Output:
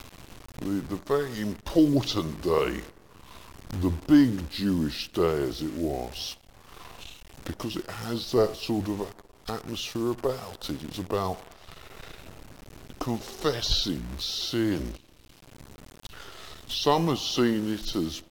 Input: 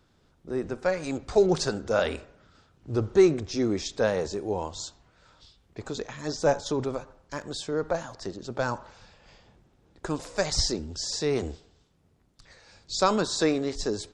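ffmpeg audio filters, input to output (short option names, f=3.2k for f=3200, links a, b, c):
-af "acrusher=bits=8:dc=4:mix=0:aa=0.000001,acompressor=mode=upward:threshold=-28dB:ratio=2.5,asetrate=34045,aresample=44100"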